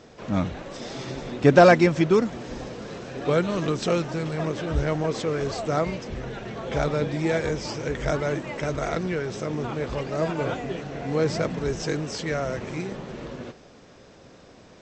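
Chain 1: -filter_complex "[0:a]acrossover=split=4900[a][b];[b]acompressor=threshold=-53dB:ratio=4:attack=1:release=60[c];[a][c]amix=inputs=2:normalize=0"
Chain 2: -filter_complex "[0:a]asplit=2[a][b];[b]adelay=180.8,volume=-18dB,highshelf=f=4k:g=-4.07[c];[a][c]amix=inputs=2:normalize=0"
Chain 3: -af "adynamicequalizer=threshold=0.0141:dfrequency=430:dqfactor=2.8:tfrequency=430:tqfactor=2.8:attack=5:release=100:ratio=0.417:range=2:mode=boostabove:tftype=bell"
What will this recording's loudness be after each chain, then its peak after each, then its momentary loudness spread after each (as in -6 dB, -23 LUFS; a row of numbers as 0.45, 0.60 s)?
-25.0, -25.0, -23.5 LUFS; -5.0, -4.5, -3.0 dBFS; 15, 14, 16 LU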